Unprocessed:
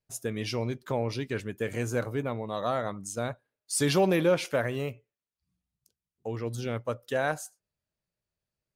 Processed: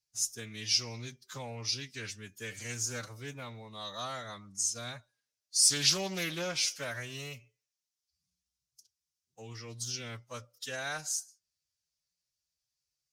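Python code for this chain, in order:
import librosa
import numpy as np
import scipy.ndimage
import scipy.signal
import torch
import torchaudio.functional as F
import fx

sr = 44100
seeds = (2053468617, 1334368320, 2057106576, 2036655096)

y = fx.tone_stack(x, sr, knobs='5-5-5')
y = fx.cheby_harmonics(y, sr, harmonics=(8,), levels_db=(-38,), full_scale_db=-20.5)
y = fx.peak_eq(y, sr, hz=5600.0, db=14.5, octaves=0.97)
y = fx.stretch_vocoder(y, sr, factor=1.5)
y = fx.doppler_dist(y, sr, depth_ms=0.19)
y = y * librosa.db_to_amplitude(5.0)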